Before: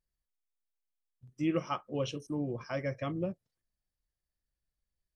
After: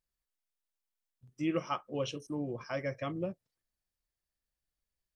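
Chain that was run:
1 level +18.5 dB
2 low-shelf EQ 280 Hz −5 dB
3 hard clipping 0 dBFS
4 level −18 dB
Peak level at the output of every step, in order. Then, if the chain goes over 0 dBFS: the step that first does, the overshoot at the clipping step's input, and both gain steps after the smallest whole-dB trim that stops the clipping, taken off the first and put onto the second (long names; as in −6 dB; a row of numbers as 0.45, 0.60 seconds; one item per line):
−0.5, −2.0, −2.0, −20.0 dBFS
no step passes full scale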